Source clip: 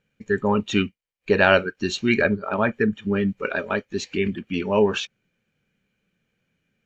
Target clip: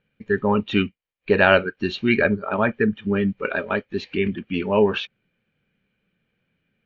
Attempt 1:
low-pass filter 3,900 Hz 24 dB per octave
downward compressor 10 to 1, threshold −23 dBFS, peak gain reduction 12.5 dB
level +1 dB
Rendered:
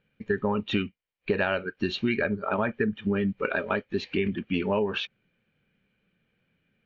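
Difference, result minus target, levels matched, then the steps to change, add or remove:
downward compressor: peak gain reduction +12.5 dB
remove: downward compressor 10 to 1, threshold −23 dBFS, peak gain reduction 12.5 dB

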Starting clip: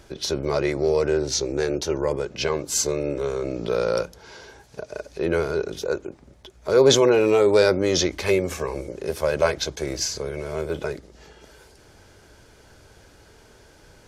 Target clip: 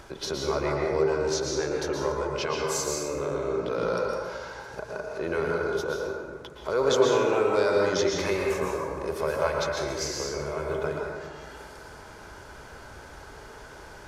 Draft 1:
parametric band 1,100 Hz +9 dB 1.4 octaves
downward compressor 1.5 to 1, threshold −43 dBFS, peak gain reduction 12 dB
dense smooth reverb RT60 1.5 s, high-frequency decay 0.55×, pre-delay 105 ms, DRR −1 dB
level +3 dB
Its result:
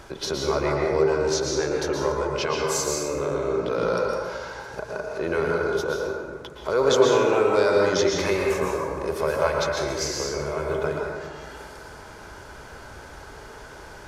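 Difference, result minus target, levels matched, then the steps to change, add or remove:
downward compressor: peak gain reduction −3.5 dB
change: downward compressor 1.5 to 1, threshold −53.5 dBFS, peak gain reduction 15.5 dB

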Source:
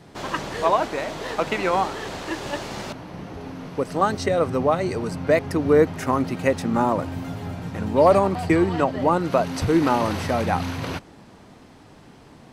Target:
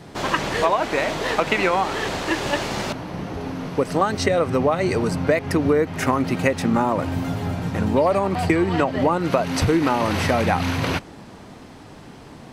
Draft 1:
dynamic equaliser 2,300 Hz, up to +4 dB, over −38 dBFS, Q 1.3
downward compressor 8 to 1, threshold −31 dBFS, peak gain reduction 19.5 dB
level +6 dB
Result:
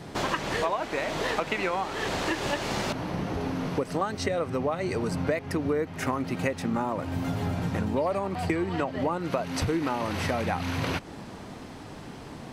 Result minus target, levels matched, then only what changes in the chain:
downward compressor: peak gain reduction +9 dB
change: downward compressor 8 to 1, threshold −21 dBFS, peak gain reduction 11 dB

